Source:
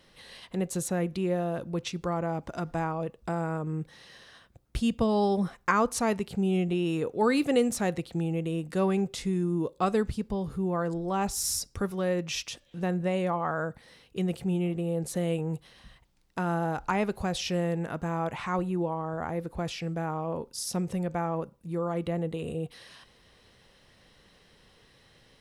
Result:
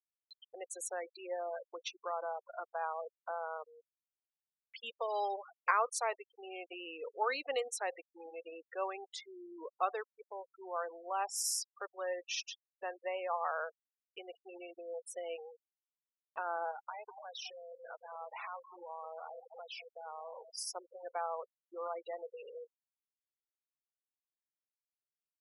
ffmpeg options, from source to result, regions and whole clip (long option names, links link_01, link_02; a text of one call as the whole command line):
ffmpeg -i in.wav -filter_complex "[0:a]asettb=1/sr,asplit=3[link_01][link_02][link_03];[link_01]atrim=end=16.714[link_04];[link_02]atrim=start=16.71:end=20.51,asetpts=PTS-STARTPTS,afade=type=in:duration=0.004:curve=qsin,afade=type=out:start_time=3.796:duration=0.004:curve=qsin,acompressor=threshold=-33dB:ratio=8:attack=3.2:release=140:knee=1:detection=peak,asplit=2[link_05][link_06];[link_06]adelay=200,lowpass=frequency=1500:poles=1,volume=-8dB,asplit=2[link_07][link_08];[link_08]adelay=200,lowpass=frequency=1500:poles=1,volume=0.4,asplit=2[link_09][link_10];[link_10]adelay=200,lowpass=frequency=1500:poles=1,volume=0.4,asplit=2[link_11][link_12];[link_12]adelay=200,lowpass=frequency=1500:poles=1,volume=0.4,asplit=2[link_13][link_14];[link_14]adelay=200,lowpass=frequency=1500:poles=1,volume=0.4[link_15];[link_05][link_07][link_09][link_11][link_13][link_15]amix=inputs=6:normalize=0,atrim=end_sample=167580[link_16];[link_03]atrim=start=20.506[link_17];[link_04][link_16]acrossfade=duration=0.004:curve1=hsin:curve2=qsin[link_18];[link_18][link_17]acrossfade=duration=0.004:curve1=qsin:curve2=hsin,highpass=frequency=560:width=0.5412,highpass=frequency=560:width=1.3066,afftfilt=real='re*gte(hypot(re,im),0.0224)':imag='im*gte(hypot(re,im),0.0224)':win_size=1024:overlap=0.75,acompressor=mode=upward:threshold=-41dB:ratio=2.5,volume=-4.5dB" out.wav